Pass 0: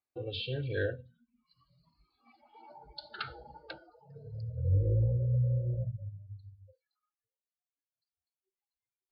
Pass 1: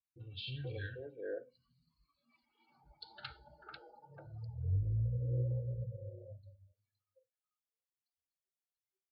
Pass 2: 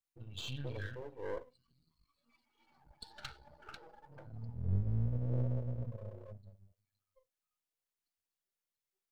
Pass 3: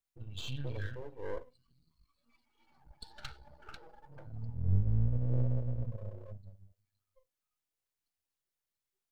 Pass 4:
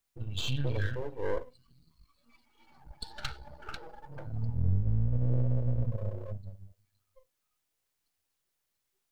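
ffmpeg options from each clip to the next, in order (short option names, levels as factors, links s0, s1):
-filter_complex "[0:a]acrossover=split=270|1300[s0][s1][s2];[s2]adelay=40[s3];[s1]adelay=480[s4];[s0][s4][s3]amix=inputs=3:normalize=0,volume=0.501"
-af "aeval=exprs='if(lt(val(0),0),0.251*val(0),val(0))':c=same,volume=1.58"
-af "lowshelf=f=91:g=8.5"
-af "acompressor=threshold=0.0316:ratio=6,volume=2.51"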